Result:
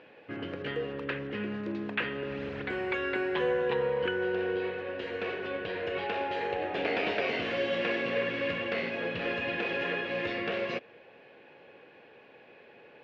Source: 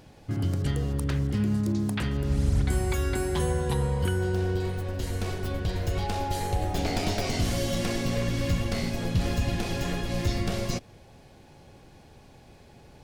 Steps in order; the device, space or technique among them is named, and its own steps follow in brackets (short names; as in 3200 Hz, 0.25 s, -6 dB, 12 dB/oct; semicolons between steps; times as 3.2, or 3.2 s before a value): phone earpiece (speaker cabinet 360–3100 Hz, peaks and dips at 480 Hz +8 dB, 780 Hz -4 dB, 1700 Hz +7 dB, 2600 Hz +8 dB)